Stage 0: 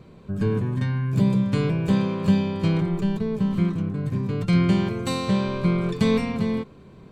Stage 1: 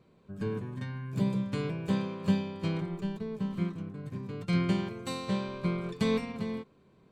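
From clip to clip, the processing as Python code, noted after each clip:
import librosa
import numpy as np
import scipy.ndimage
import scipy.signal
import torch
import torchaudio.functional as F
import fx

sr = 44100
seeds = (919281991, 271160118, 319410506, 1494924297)

y = fx.low_shelf(x, sr, hz=140.0, db=-8.0)
y = fx.upward_expand(y, sr, threshold_db=-34.0, expansion=1.5)
y = y * 10.0 ** (-4.0 / 20.0)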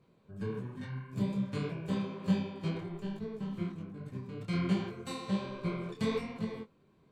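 y = fx.detune_double(x, sr, cents=43)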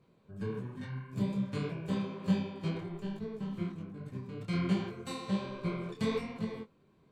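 y = x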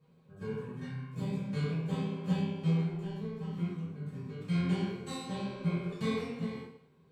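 y = fx.rev_fdn(x, sr, rt60_s=0.7, lf_ratio=0.95, hf_ratio=0.95, size_ms=37.0, drr_db=-6.5)
y = y * 10.0 ** (-7.5 / 20.0)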